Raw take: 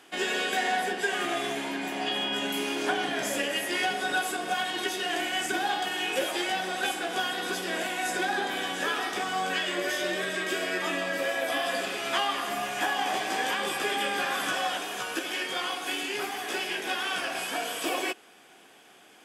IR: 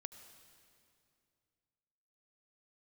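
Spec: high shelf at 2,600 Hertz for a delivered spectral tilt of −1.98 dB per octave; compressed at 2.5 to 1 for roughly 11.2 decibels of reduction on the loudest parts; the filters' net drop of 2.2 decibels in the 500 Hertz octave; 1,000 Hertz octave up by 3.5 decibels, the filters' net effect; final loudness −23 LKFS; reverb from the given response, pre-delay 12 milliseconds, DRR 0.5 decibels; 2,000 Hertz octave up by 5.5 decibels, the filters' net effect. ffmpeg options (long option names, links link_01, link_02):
-filter_complex "[0:a]equalizer=frequency=500:width_type=o:gain=-6,equalizer=frequency=1000:width_type=o:gain=6.5,equalizer=frequency=2000:width_type=o:gain=3.5,highshelf=frequency=2600:gain=4,acompressor=threshold=-37dB:ratio=2.5,asplit=2[link_01][link_02];[1:a]atrim=start_sample=2205,adelay=12[link_03];[link_02][link_03]afir=irnorm=-1:irlink=0,volume=4dB[link_04];[link_01][link_04]amix=inputs=2:normalize=0,volume=8dB"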